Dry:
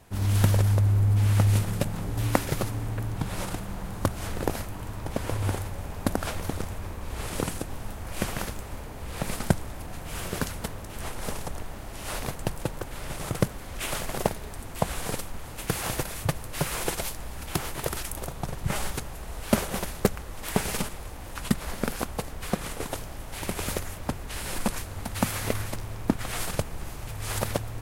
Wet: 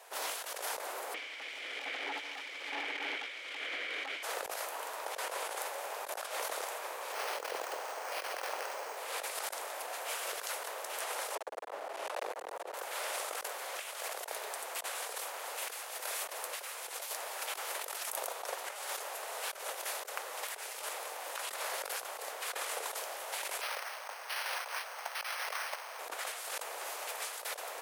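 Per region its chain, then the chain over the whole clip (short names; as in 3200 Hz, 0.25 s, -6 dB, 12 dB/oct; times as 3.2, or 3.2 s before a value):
1.14–4.23 vowel filter i + overdrive pedal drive 38 dB, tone 2500 Hz, clips at -18 dBFS
7.12–8.97 careless resampling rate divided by 6×, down filtered, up hold + echo with dull and thin repeats by turns 0.12 s, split 1000 Hz, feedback 57%, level -6 dB
11.35–12.74 tilt -4 dB/oct + hard clip -15.5 dBFS
23.61–25.99 HPF 770 Hz + careless resampling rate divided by 6×, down filtered, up hold
whole clip: steep high-pass 480 Hz 36 dB/oct; negative-ratio compressor -40 dBFS, ratio -1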